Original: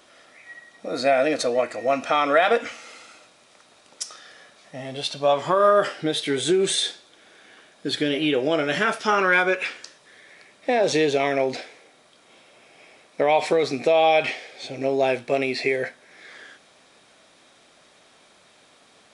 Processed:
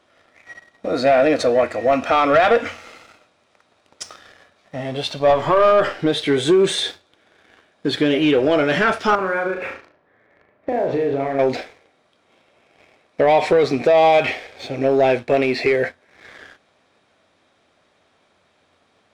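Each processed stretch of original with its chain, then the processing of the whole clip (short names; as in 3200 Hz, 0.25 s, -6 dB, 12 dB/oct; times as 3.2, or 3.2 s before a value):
5.3–5.99 half-wave gain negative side -3 dB + high shelf 9300 Hz -5.5 dB + three-band squash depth 40%
9.15–11.39 LPF 1400 Hz + compressor 4:1, threshold -27 dBFS + flutter echo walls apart 6.3 m, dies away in 0.45 s
whole clip: sample leveller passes 2; LPF 2300 Hz 6 dB/oct; bell 88 Hz +14 dB 0.25 oct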